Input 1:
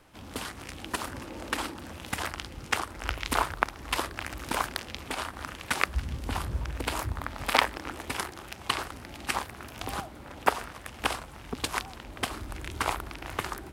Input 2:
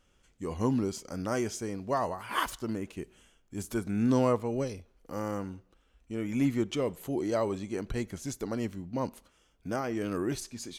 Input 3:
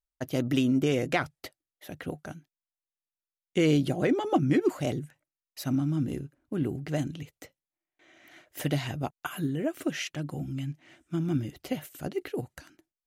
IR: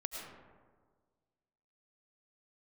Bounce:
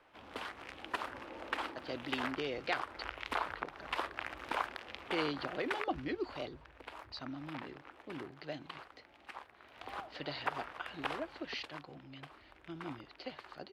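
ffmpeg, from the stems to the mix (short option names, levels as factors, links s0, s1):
-filter_complex "[0:a]alimiter=limit=0.178:level=0:latency=1:release=122,volume=2.37,afade=t=out:st=5.52:d=0.7:silence=0.266073,afade=t=in:st=9.61:d=0.65:silence=0.281838,afade=t=out:st=11.28:d=0.43:silence=0.251189[s0];[2:a]lowpass=f=4500:t=q:w=9.7,adelay=1550,volume=0.355[s1];[s0][s1]amix=inputs=2:normalize=0,acrossover=split=350 3700:gain=0.2 1 0.112[s2][s3][s4];[s2][s3][s4]amix=inputs=3:normalize=0"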